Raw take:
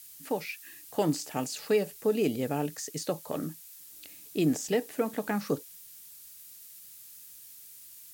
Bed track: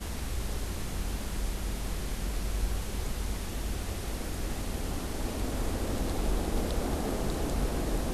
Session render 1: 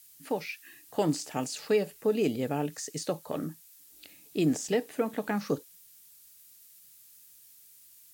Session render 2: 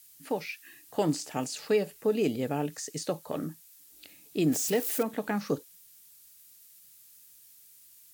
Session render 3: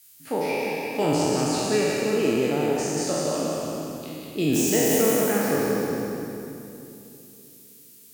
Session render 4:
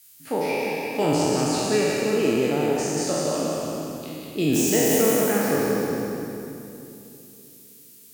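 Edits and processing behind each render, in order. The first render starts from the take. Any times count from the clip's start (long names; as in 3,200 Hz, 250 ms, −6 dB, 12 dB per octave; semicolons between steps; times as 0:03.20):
noise reduction from a noise print 6 dB
0:04.52–0:05.03: spike at every zero crossing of −28 dBFS
peak hold with a decay on every bin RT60 2.51 s; on a send: echo with a time of its own for lows and highs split 380 Hz, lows 323 ms, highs 180 ms, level −4 dB
level +1 dB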